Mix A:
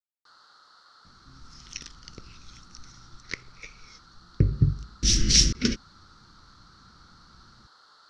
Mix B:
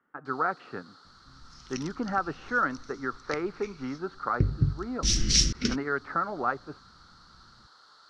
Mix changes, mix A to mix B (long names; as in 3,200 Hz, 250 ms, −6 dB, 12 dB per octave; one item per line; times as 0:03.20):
speech: unmuted
second sound −3.5 dB